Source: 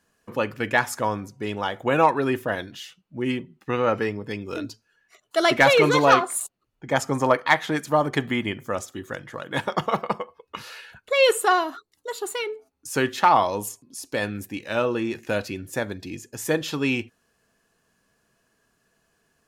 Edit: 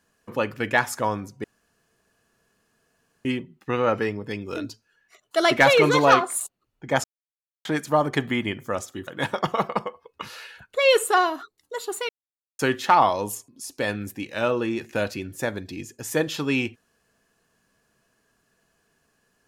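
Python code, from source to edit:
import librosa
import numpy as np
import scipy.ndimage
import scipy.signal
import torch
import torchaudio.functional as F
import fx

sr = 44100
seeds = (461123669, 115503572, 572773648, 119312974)

y = fx.edit(x, sr, fx.room_tone_fill(start_s=1.44, length_s=1.81),
    fx.silence(start_s=7.04, length_s=0.61),
    fx.cut(start_s=9.07, length_s=0.34),
    fx.silence(start_s=12.43, length_s=0.5), tone=tone)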